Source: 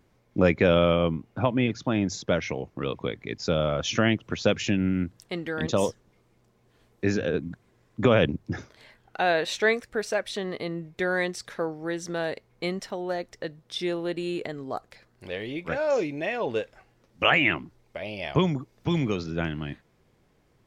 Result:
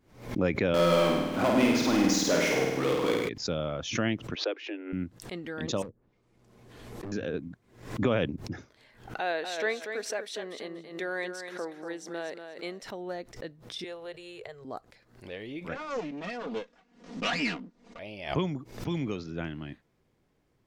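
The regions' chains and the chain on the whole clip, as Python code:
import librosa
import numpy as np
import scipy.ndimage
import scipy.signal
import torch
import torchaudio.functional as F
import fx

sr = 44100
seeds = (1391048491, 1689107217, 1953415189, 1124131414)

y = fx.chain(x, sr, fx.highpass(hz=240.0, slope=12),
    fx.power_curve(exponent=0.5),
    fx.room_flutter(wall_m=8.9, rt60_s=1.2), at=(0.74, 3.29))
y = fx.chain(y, sr, fx.steep_highpass(hz=300.0, slope=96),
    fx.air_absorb(metres=310.0), at=(4.35, 4.93))
y = fx.chain(y, sr, fx.env_lowpass_down(base_hz=320.0, full_db=-25.0),
    fx.clip_hard(threshold_db=-30.0),
    fx.pre_swell(db_per_s=39.0), at=(5.82, 7.12))
y = fx.chain(y, sr, fx.highpass(hz=300.0, slope=12),
    fx.echo_feedback(ms=239, feedback_pct=21, wet_db=-8), at=(9.2, 12.82))
y = fx.chain(y, sr, fx.cheby1_bandstop(low_hz=120.0, high_hz=430.0, order=2),
    fx.peak_eq(hz=310.0, db=-14.5, octaves=0.23), at=(13.84, 14.65))
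y = fx.chain(y, sr, fx.lower_of_two(delay_ms=4.2),
    fx.lowpass(hz=7400.0, slope=24),
    fx.low_shelf_res(hz=140.0, db=-9.0, q=3.0), at=(15.75, 17.99))
y = fx.peak_eq(y, sr, hz=280.0, db=3.0, octaves=0.68)
y = fx.pre_swell(y, sr, db_per_s=110.0)
y = F.gain(torch.from_numpy(y), -7.5).numpy()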